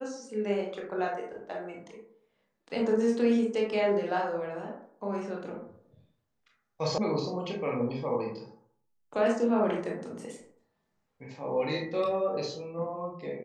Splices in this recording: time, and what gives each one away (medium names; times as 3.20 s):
6.98 s: sound stops dead